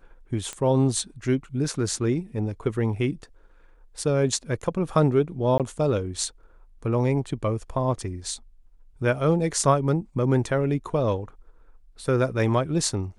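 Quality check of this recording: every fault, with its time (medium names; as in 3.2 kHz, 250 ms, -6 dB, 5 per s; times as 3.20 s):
0.53 s: pop -18 dBFS
5.58–5.60 s: dropout 17 ms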